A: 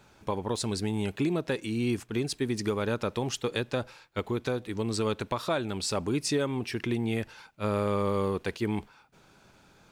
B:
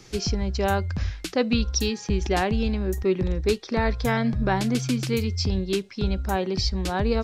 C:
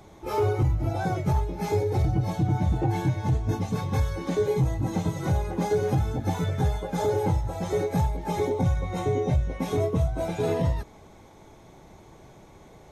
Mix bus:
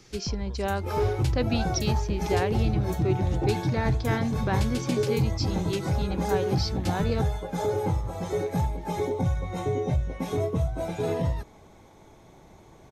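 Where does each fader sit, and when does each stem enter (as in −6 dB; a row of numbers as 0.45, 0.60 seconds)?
−19.0, −5.0, −2.0 decibels; 0.00, 0.00, 0.60 seconds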